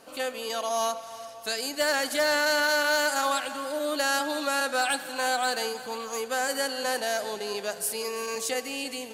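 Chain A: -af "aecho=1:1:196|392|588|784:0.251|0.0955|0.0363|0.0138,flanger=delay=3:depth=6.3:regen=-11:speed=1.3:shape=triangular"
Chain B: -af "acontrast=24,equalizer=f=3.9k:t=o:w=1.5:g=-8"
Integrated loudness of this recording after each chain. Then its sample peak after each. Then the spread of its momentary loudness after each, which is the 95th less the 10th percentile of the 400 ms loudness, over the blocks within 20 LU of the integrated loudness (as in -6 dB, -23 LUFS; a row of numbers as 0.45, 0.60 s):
-30.5, -24.5 LUFS; -15.5, -11.0 dBFS; 9, 9 LU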